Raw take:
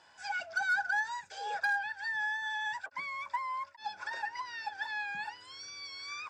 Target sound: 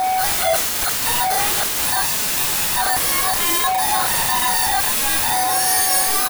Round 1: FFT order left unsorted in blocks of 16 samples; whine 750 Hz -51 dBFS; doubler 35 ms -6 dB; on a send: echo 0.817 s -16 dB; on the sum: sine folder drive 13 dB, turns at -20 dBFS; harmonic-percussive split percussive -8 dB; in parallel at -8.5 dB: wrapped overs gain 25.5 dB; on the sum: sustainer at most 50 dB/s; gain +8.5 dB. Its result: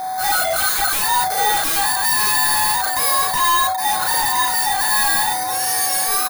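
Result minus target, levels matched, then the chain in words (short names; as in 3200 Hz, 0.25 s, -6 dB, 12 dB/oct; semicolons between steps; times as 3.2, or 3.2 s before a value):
sine folder: distortion -13 dB
FFT order left unsorted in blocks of 16 samples; whine 750 Hz -51 dBFS; doubler 35 ms -6 dB; on a send: echo 0.817 s -16 dB; on the sum: sine folder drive 21 dB, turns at -20 dBFS; harmonic-percussive split percussive -8 dB; in parallel at -8.5 dB: wrapped overs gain 25.5 dB; on the sum: sustainer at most 50 dB/s; gain +8.5 dB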